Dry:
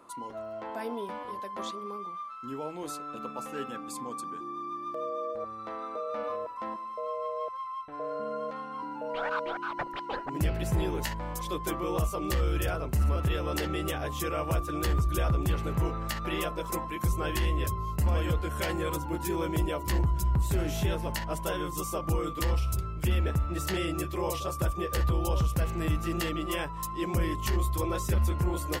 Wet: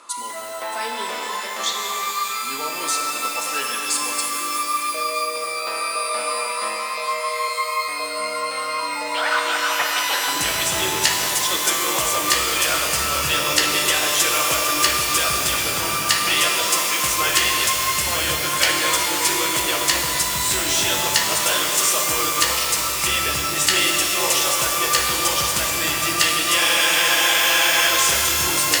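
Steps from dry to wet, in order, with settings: frequency weighting ITU-R 468; two-band feedback delay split 800 Hz, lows 171 ms, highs 623 ms, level -14 dB; spectral freeze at 26.60 s, 1.30 s; pitch-shifted reverb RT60 3.5 s, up +12 st, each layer -2 dB, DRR 1 dB; trim +8.5 dB

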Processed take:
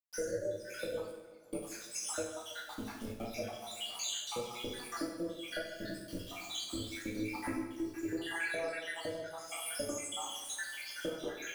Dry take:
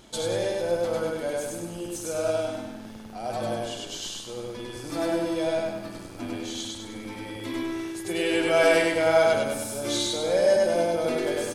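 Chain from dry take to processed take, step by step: random holes in the spectrogram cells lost 83%; rotary cabinet horn 8 Hz, later 0.7 Hz, at 2.61 s; bit crusher 10-bit; 1.10–1.53 s: inverted gate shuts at -41 dBFS, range -34 dB; compression 16:1, threshold -44 dBFS, peak gain reduction 25.5 dB; tape echo 166 ms, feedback 64%, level -14 dB, low-pass 2.6 kHz; two-slope reverb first 0.68 s, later 1.8 s, DRR -4 dB; trim +5 dB

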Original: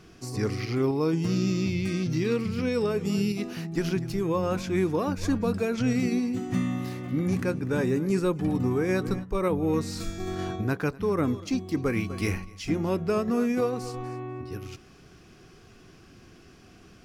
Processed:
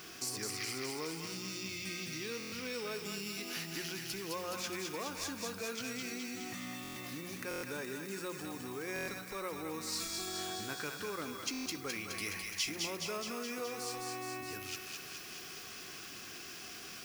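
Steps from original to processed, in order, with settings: on a send at -16 dB: reverberation RT60 0.60 s, pre-delay 57 ms; on the sum: compression 3:1, threshold -39 dBFS, peak gain reduction 14 dB; treble shelf 4.7 kHz -6 dB; in parallel at +2 dB: peak limiter -37 dBFS, peak gain reduction 10 dB; on the sum: added noise blue -72 dBFS; tilt EQ +4 dB/octave; hum notches 60/120/180 Hz; thinning echo 210 ms, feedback 72%, high-pass 1.1 kHz, level -3 dB; buffer glitch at 2.38/6.82/7.49/8.94/11.52 s, samples 1024, times 5; trim -3 dB

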